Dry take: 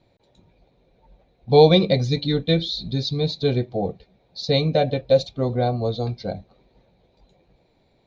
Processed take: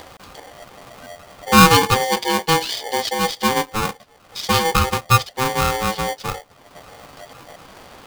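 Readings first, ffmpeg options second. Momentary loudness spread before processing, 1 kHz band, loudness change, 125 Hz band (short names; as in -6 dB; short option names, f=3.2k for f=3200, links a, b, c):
15 LU, +11.5 dB, +3.0 dB, -1.5 dB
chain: -af "acompressor=mode=upward:threshold=-28dB:ratio=2.5,aeval=exprs='val(0)*sgn(sin(2*PI*650*n/s))':c=same,volume=2dB"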